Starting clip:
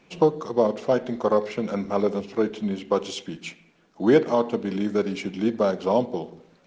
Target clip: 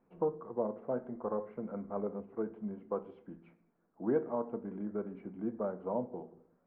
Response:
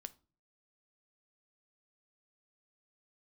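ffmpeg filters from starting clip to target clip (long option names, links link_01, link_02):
-filter_complex "[0:a]lowpass=frequency=1400:width=0.5412,lowpass=frequency=1400:width=1.3066[link_01];[1:a]atrim=start_sample=2205,asetrate=52920,aresample=44100[link_02];[link_01][link_02]afir=irnorm=-1:irlink=0,volume=-7dB"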